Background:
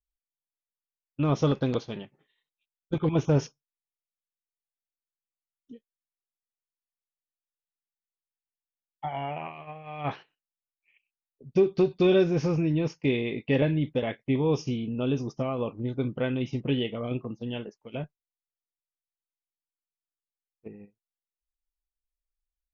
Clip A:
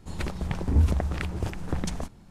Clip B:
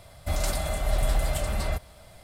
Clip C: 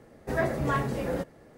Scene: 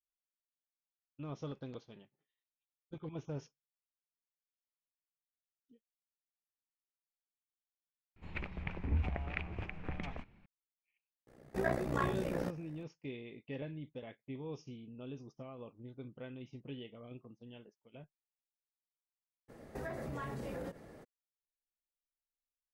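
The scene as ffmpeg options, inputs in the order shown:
-filter_complex "[3:a]asplit=2[s0][s1];[0:a]volume=0.112[s2];[1:a]lowpass=f=2400:t=q:w=4.5[s3];[s0]tremolo=f=61:d=0.889[s4];[s1]acompressor=threshold=0.0126:ratio=6:attack=3.2:release=140:knee=1:detection=peak[s5];[s3]atrim=end=2.3,asetpts=PTS-STARTPTS,volume=0.237,afade=t=in:d=0.004:c=hsin,afade=t=out:st=2.296:d=0.004:c=hsin,adelay=8160[s6];[s4]atrim=end=1.57,asetpts=PTS-STARTPTS,volume=0.668,afade=t=in:d=0.004:c=hsin,afade=t=out:st=1.566:d=0.004:c=hsin,adelay=11270[s7];[s5]atrim=end=1.57,asetpts=PTS-STARTPTS,volume=0.891,afade=t=in:d=0.02,afade=t=out:st=1.55:d=0.02,adelay=19480[s8];[s2][s6][s7][s8]amix=inputs=4:normalize=0"

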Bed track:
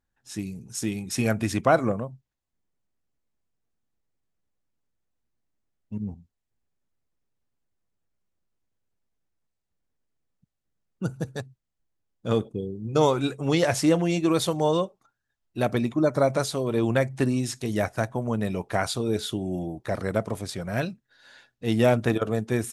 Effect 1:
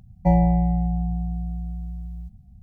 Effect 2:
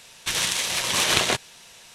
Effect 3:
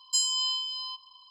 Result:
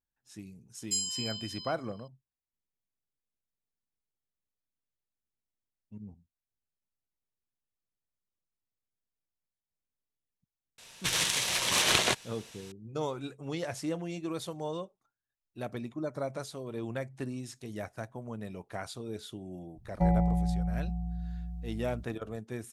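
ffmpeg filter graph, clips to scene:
-filter_complex "[0:a]volume=0.211[s0];[3:a]aderivative,atrim=end=1.3,asetpts=PTS-STARTPTS,volume=0.631,afade=t=in:d=0.004:c=hsin,afade=t=out:st=1.296:d=0.004:c=hsin,adelay=780[s1];[2:a]atrim=end=1.94,asetpts=PTS-STARTPTS,volume=0.596,afade=t=in:d=0.004:c=hsin,afade=t=out:st=1.936:d=0.004:c=hsin,adelay=10780[s2];[1:a]atrim=end=2.62,asetpts=PTS-STARTPTS,volume=0.398,afade=t=in:d=0.004:c=hsin,afade=t=out:st=2.616:d=0.004:c=hsin,adelay=19750[s3];[s0][s1][s2][s3]amix=inputs=4:normalize=0"

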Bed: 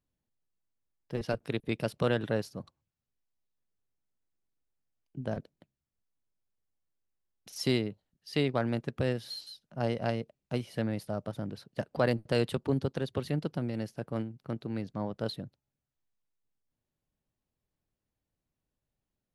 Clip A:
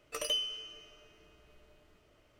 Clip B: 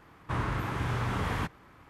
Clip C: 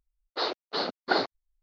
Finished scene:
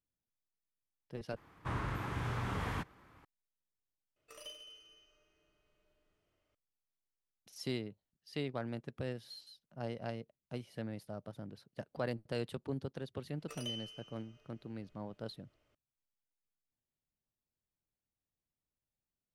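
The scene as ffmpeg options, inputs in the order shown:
-filter_complex "[1:a]asplit=2[s0][s1];[0:a]volume=0.316[s2];[s0]aecho=1:1:40|88|145.6|214.7|297.7|397.2|516.6:0.631|0.398|0.251|0.158|0.1|0.0631|0.0398[s3];[s1]highshelf=f=12000:g=-6.5[s4];[s2]asplit=3[s5][s6][s7];[s5]atrim=end=1.364[s8];[2:a]atrim=end=1.89,asetpts=PTS-STARTPTS,volume=0.473[s9];[s6]atrim=start=3.246:end=4.164[s10];[s3]atrim=end=2.39,asetpts=PTS-STARTPTS,volume=0.141[s11];[s7]atrim=start=6.546[s12];[s4]atrim=end=2.39,asetpts=PTS-STARTPTS,volume=0.316,afade=t=in:d=0.004:c=hsin,afade=t=out:st=2.386:d=0.004:c=hsin,adelay=13360[s13];[s8][s9]acrossfade=d=0.004:c1=hsin:c2=hsin[s14];[s14][s10]acrossfade=d=0.004:c1=hsin:c2=hsin[s15];[s15][s11]acrossfade=d=0.004:c1=hsin:c2=hsin[s16];[s16][s12]acrossfade=d=0.004:c1=hsin:c2=hsin[s17];[s17][s13]amix=inputs=2:normalize=0"

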